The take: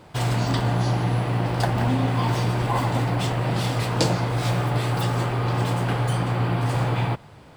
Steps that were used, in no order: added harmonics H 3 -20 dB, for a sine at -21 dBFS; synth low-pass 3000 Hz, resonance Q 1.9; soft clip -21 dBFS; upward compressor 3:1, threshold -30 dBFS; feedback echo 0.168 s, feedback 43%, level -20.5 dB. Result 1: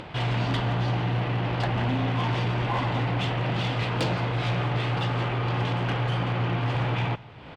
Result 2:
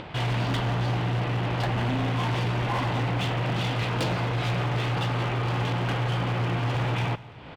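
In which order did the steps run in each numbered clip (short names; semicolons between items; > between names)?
synth low-pass > upward compressor > soft clip > feedback echo > added harmonics; upward compressor > synth low-pass > added harmonics > soft clip > feedback echo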